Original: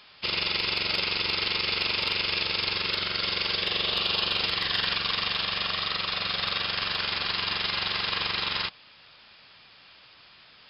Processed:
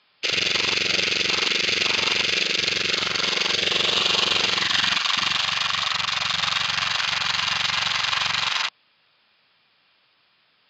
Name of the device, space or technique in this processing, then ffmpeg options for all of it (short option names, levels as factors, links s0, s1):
over-cleaned archive recording: -af "highpass=120,lowpass=5200,afwtdn=0.0282,volume=2.37"